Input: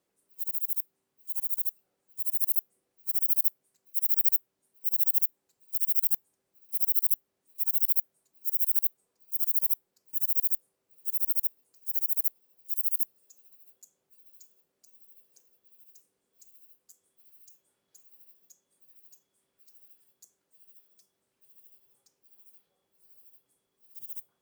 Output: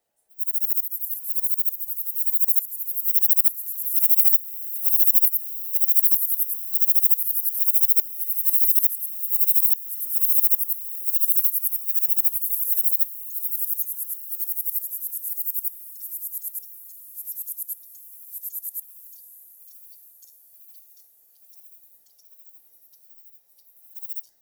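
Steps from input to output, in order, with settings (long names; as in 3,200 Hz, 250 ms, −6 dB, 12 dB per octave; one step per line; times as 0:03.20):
frequency inversion band by band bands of 1,000 Hz
high-shelf EQ 11,000 Hz +8 dB
delay with pitch and tempo change per echo 184 ms, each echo −3 semitones, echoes 2, each echo −6 dB
feedback delay with all-pass diffusion 625 ms, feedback 66%, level −14.5 dB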